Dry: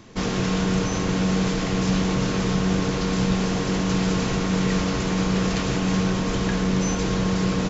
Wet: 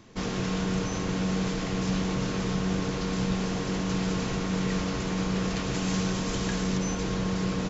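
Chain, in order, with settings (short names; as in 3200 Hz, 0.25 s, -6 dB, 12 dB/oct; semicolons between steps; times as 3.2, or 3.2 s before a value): 5.74–6.78 high shelf 5100 Hz +9.5 dB; gain -6 dB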